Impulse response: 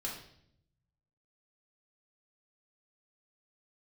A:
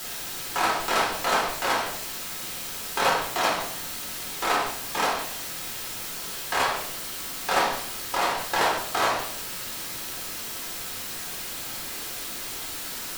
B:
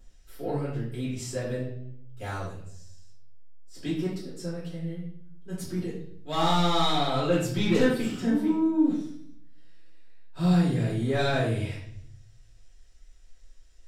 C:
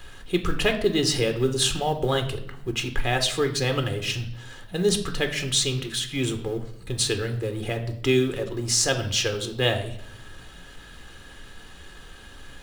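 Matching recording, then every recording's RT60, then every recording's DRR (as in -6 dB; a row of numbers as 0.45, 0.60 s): A; 0.70, 0.70, 0.70 s; -3.5, -9.5, 6.0 dB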